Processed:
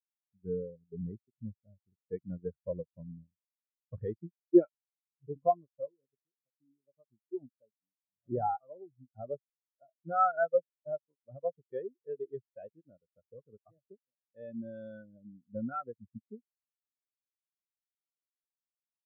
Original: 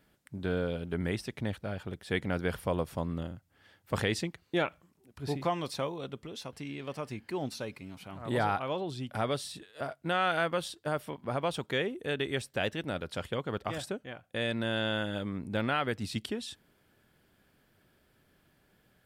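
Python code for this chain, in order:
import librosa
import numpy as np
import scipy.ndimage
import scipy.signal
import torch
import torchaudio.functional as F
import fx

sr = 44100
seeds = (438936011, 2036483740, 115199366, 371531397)

y = fx.law_mismatch(x, sr, coded='A')
y = fx.high_shelf(y, sr, hz=3100.0, db=-4.5)
y = fx.spectral_expand(y, sr, expansion=4.0)
y = y * librosa.db_to_amplitude(6.5)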